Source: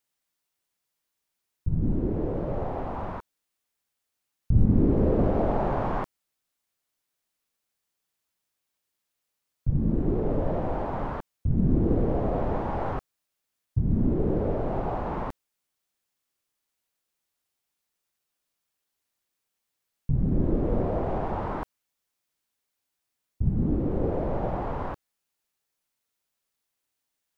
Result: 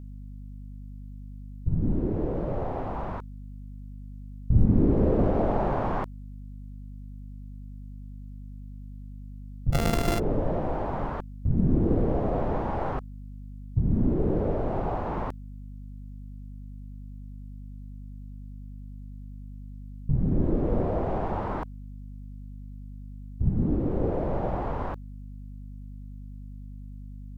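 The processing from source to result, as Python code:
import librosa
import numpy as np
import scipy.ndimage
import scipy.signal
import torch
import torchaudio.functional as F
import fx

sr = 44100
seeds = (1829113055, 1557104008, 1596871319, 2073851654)

y = fx.sample_sort(x, sr, block=64, at=(9.72, 10.18), fade=0.02)
y = fx.add_hum(y, sr, base_hz=50, snr_db=12)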